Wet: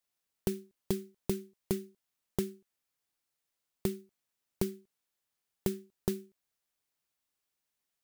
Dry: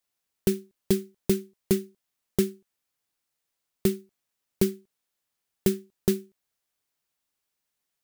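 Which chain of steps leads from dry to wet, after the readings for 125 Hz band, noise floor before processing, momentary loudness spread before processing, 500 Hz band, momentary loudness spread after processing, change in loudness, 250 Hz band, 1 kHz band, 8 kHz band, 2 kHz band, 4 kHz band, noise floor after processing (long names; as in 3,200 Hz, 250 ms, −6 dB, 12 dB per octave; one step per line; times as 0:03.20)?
−7.5 dB, −83 dBFS, 5 LU, −9.0 dB, 5 LU, −9.0 dB, −9.5 dB, −1.5 dB, −9.0 dB, −9.0 dB, −9.0 dB, below −85 dBFS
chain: downward compressor, threshold −24 dBFS, peak gain reduction 7.5 dB
level −3.5 dB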